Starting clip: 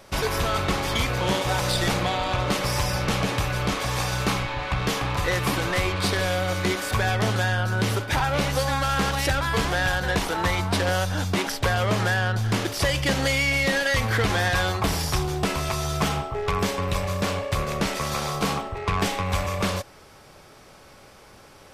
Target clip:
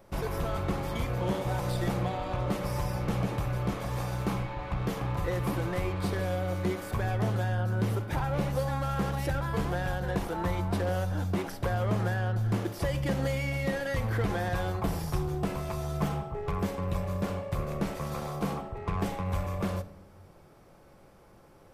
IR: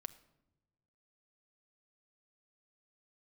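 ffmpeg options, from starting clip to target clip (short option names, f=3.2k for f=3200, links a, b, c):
-filter_complex "[0:a]equalizer=f=4.5k:w=0.31:g=-13.5[a];[1:a]atrim=start_sample=2205[b];[a][b]afir=irnorm=-1:irlink=0"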